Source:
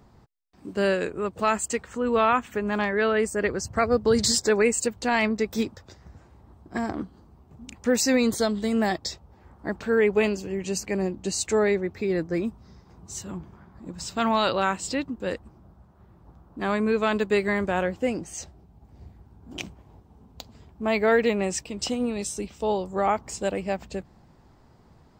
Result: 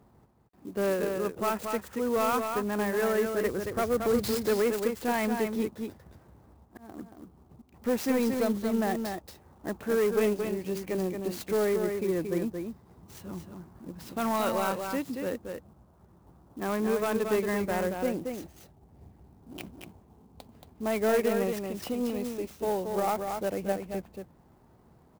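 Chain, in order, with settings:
high-pass filter 510 Hz 6 dB per octave
spectral tilt −3.5 dB per octave
0:05.54–0:07.74: volume swells 511 ms
soft clipping −16.5 dBFS, distortion −17 dB
single-tap delay 228 ms −5.5 dB
converter with an unsteady clock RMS 0.034 ms
level −3 dB

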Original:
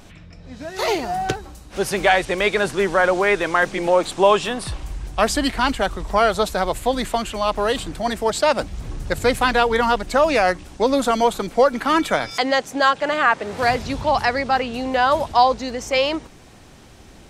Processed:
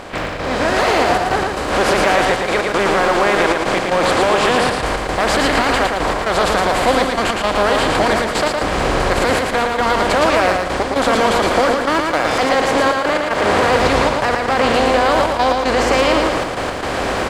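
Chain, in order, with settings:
compressor on every frequency bin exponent 0.4
high-shelf EQ 8,600 Hz −9.5 dB
asymmetric clip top −8.5 dBFS, bottom −1 dBFS
brickwall limiter −6.5 dBFS, peak gain reduction 5.5 dB
surface crackle 250 per second −35 dBFS
gate pattern ".x.xxxxxx" 115 BPM −12 dB
repeating echo 113 ms, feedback 41%, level −3.5 dB
every ending faded ahead of time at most 220 dB per second

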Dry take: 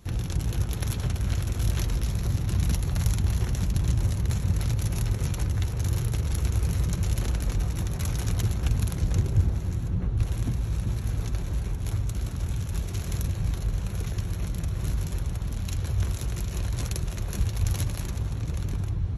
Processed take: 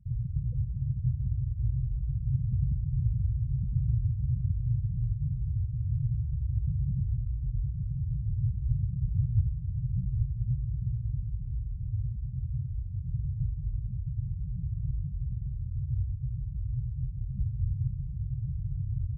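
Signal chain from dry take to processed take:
elliptic band-stop filter 230–460 Hz
gate on every frequency bin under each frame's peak −10 dB strong
parametric band 130 Hz +12 dB 0.26 octaves
on a send: repeating echo 169 ms, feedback 57%, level −17.5 dB
on the sum: level −5 dB

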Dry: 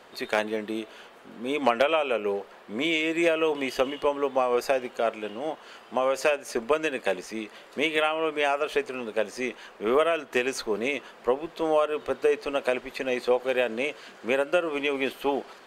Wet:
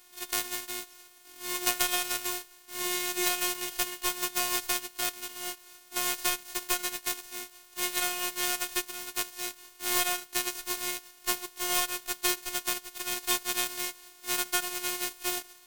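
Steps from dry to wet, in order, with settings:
spectral envelope flattened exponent 0.1
phases set to zero 358 Hz
level −3.5 dB

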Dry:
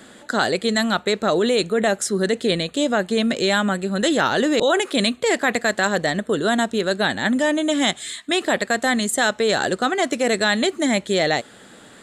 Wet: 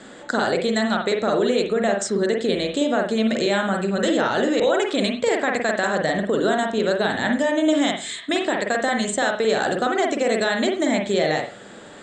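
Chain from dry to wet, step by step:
downward compressor, threshold −21 dBFS, peak gain reduction 7.5 dB
Butterworth low-pass 8,600 Hz 96 dB per octave
parametric band 600 Hz +3.5 dB 1.6 octaves
on a send: convolution reverb, pre-delay 45 ms, DRR 2 dB

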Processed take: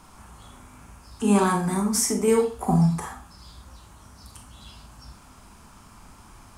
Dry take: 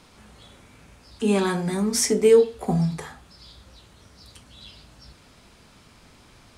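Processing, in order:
octave-band graphic EQ 125/250/500/1,000/2,000/4,000 Hz −5/−3/−12/+5/−8/−12 dB
0:01.71–0:02.28: downward compressor 2.5 to 1, threshold −29 dBFS, peak gain reduction 5 dB
four-comb reverb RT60 0.31 s, combs from 28 ms, DRR 4.5 dB
level +6.5 dB

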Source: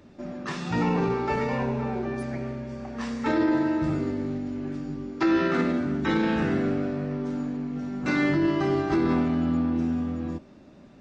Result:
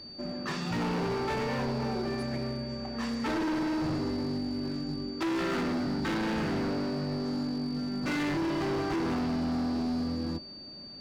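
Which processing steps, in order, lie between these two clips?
steady tone 4,600 Hz −43 dBFS
gain into a clipping stage and back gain 27 dB
level −1 dB

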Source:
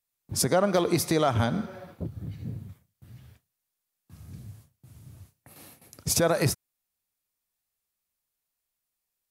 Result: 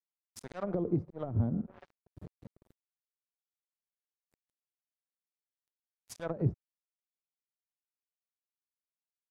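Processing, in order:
volume swells 287 ms
dead-zone distortion −40.5 dBFS
treble cut that deepens with the level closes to 330 Hz, closed at −27.5 dBFS
level −1.5 dB

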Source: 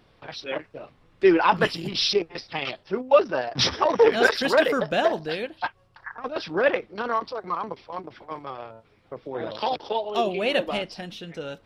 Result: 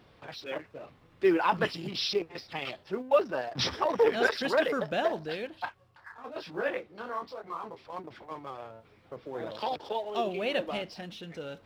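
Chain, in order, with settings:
mu-law and A-law mismatch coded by mu
high-pass filter 47 Hz
high-shelf EQ 5,800 Hz −5 dB
0:05.65–0:07.85: micro pitch shift up and down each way 37 cents
level −7 dB

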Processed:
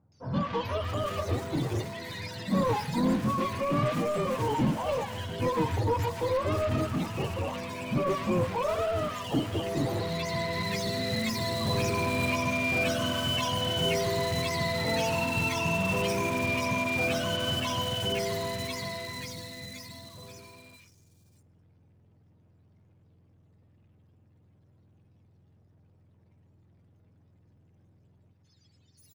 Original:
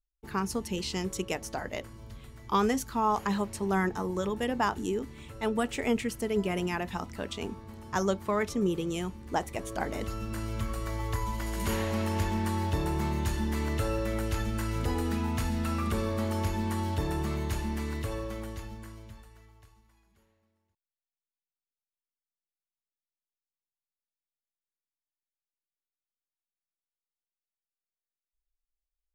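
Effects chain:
frequency axis turned over on the octave scale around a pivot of 470 Hz
power curve on the samples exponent 0.5
three-band delay without the direct sound lows, mids, highs 120/650 ms, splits 1,300/5,000 Hz
on a send at −16.5 dB: convolution reverb RT60 1.3 s, pre-delay 6 ms
on the sum: level −3 dB

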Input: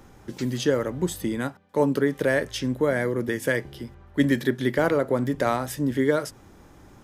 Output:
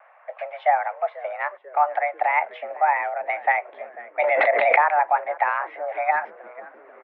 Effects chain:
harmonic and percussive parts rebalanced percussive +8 dB
single-sideband voice off tune +300 Hz 320–2,100 Hz
echo with shifted repeats 491 ms, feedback 53%, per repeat −87 Hz, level −19.5 dB
pitch vibrato 2.2 Hz 41 cents
0:04.22–0:04.84: background raised ahead of every attack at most 23 dB per second
level −2 dB

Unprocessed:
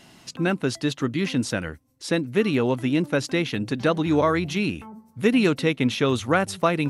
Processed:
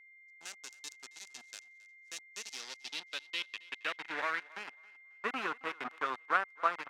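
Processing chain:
high-pass filter 170 Hz 24 dB per octave
power curve on the samples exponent 3
in parallel at −8 dB: fuzz pedal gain 45 dB, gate −48 dBFS
on the sum: band-pass filter sweep 6,600 Hz → 1,300 Hz, 0:02.32–0:04.70
steady tone 2,100 Hz −56 dBFS
on a send: feedback echo with a high-pass in the loop 271 ms, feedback 27%, high-pass 420 Hz, level −21.5 dB

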